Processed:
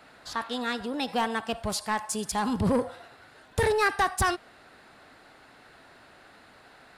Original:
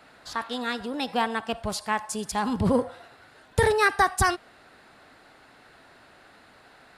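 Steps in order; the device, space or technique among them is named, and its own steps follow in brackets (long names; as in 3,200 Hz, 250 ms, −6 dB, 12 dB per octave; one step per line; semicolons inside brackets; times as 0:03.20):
0:01.08–0:02.96: high-shelf EQ 5,300 Hz +4 dB
saturation between pre-emphasis and de-emphasis (high-shelf EQ 10,000 Hz +8.5 dB; soft clipping −17.5 dBFS, distortion −13 dB; high-shelf EQ 10,000 Hz −8.5 dB)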